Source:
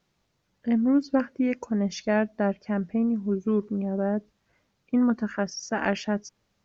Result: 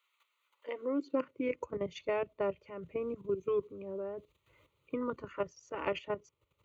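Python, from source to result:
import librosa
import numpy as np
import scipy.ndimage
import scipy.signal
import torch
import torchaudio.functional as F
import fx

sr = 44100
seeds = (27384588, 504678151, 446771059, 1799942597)

y = fx.level_steps(x, sr, step_db=12)
y = fx.filter_sweep_highpass(y, sr, from_hz=1400.0, to_hz=67.0, start_s=0.43, end_s=1.56, q=1.4)
y = fx.fixed_phaser(y, sr, hz=1100.0, stages=8)
y = fx.band_squash(y, sr, depth_pct=40)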